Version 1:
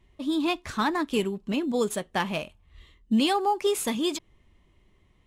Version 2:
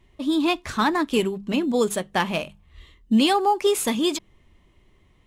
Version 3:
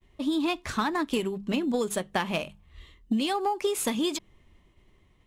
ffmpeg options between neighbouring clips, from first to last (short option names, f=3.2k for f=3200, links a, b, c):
-af "bandreject=f=50:t=h:w=6,bandreject=f=100:t=h:w=6,bandreject=f=150:t=h:w=6,bandreject=f=200:t=h:w=6,volume=4.5dB"
-af "agate=range=-33dB:threshold=-55dB:ratio=3:detection=peak,acompressor=threshold=-22dB:ratio=12,aeval=exprs='0.168*(cos(1*acos(clip(val(0)/0.168,-1,1)))-cos(1*PI/2))+0.0106*(cos(3*acos(clip(val(0)/0.168,-1,1)))-cos(3*PI/2))':c=same"